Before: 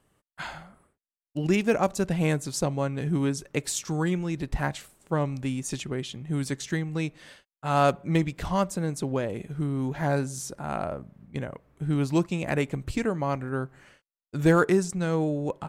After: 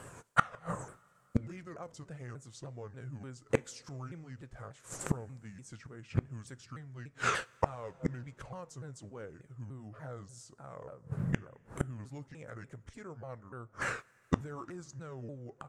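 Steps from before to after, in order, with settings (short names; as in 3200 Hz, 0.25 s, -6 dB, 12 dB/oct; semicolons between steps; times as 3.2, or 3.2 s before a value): repeated pitch sweeps -6 st, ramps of 0.294 s; limiter -19 dBFS, peak gain reduction 10 dB; ten-band EQ 125 Hz +11 dB, 500 Hz +9 dB, 8000 Hz +11 dB; flipped gate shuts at -25 dBFS, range -35 dB; bell 1400 Hz +12 dB 1.3 oct; two-slope reverb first 0.31 s, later 3.6 s, from -18 dB, DRR 18 dB; gain +10.5 dB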